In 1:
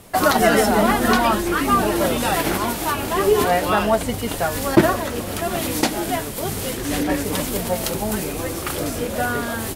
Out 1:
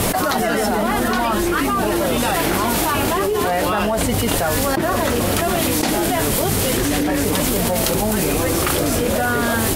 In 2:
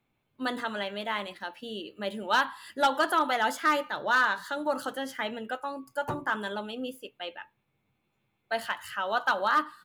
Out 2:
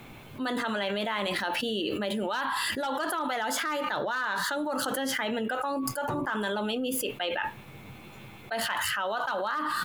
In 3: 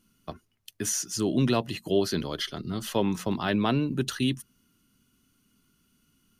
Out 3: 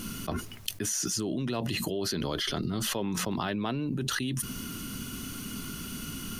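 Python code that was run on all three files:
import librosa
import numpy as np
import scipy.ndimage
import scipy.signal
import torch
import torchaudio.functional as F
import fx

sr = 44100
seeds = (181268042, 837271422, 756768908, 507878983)

y = fx.env_flatten(x, sr, amount_pct=100)
y = F.gain(torch.from_numpy(y), -10.5).numpy()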